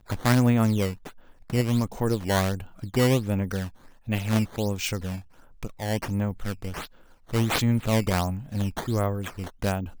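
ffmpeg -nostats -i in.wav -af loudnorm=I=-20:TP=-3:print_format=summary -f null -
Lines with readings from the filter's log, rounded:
Input Integrated:    -26.5 LUFS
Input True Peak:      -4.9 dBTP
Input LRA:             3.0 LU
Input Threshold:     -37.0 LUFS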